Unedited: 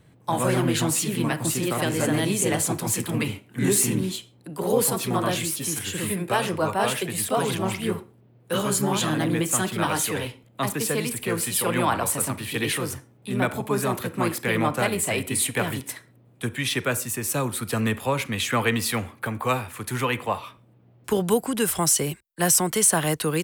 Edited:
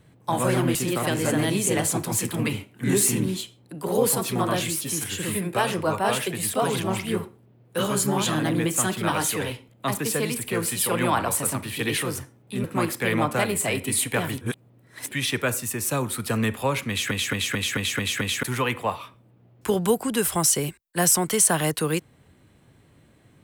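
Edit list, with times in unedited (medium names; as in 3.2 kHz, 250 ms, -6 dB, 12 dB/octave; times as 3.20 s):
0.75–1.50 s: delete
13.39–14.07 s: delete
15.84–16.54 s: reverse
18.32 s: stutter in place 0.22 s, 7 plays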